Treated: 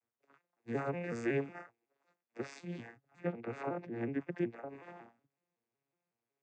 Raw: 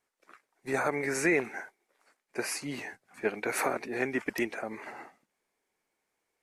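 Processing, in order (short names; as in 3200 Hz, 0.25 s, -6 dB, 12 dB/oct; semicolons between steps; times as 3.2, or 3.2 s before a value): arpeggiated vocoder minor triad, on A#2, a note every 0.185 s; 3.27–4.69 high shelf 3200 Hz -11 dB; gain -5.5 dB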